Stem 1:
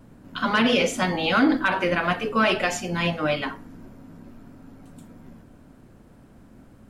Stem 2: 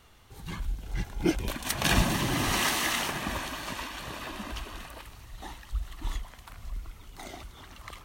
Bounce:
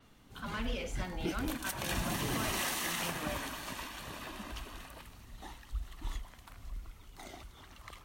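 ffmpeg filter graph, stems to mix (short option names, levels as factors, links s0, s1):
-filter_complex "[0:a]asoftclip=type=tanh:threshold=0.178,volume=0.141[s0];[1:a]adynamicequalizer=threshold=0.00501:dfrequency=7300:dqfactor=0.7:tfrequency=7300:tqfactor=0.7:attack=5:release=100:ratio=0.375:range=2.5:mode=boostabove:tftype=highshelf,volume=0.501[s1];[s0][s1]amix=inputs=2:normalize=0,alimiter=limit=0.0631:level=0:latency=1:release=99"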